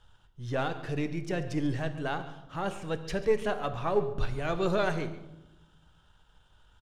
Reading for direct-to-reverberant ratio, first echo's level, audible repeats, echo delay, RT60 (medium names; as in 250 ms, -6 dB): 9.0 dB, -17.0 dB, 1, 139 ms, 0.95 s